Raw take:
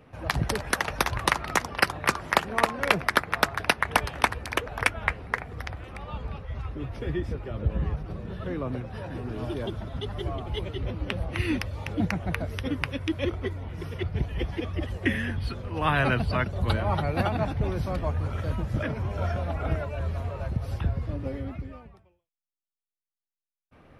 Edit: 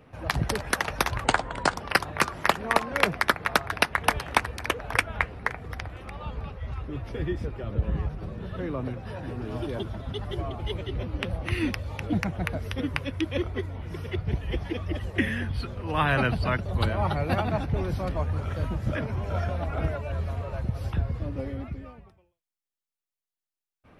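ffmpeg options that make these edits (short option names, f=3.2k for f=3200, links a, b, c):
-filter_complex "[0:a]asplit=3[a][b][c];[a]atrim=end=1.244[d];[b]atrim=start=1.24:end=1.64,asetpts=PTS-STARTPTS,asetrate=33516,aresample=44100[e];[c]atrim=start=1.636[f];[d][e]acrossfade=d=0.004:c1=hsin:c2=hsin[g];[g][f]acrossfade=d=0.004:c1=hsin:c2=hsin"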